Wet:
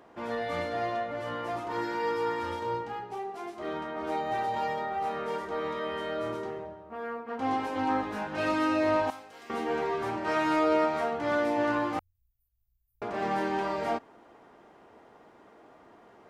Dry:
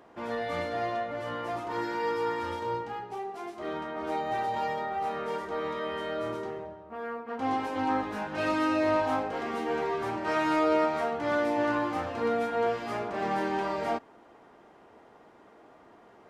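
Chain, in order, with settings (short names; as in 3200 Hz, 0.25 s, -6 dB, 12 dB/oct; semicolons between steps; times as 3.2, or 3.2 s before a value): 9.1–9.5 pre-emphasis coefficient 0.9; 11.99–13.02 inverse Chebyshev band-stop 230–4500 Hz, stop band 80 dB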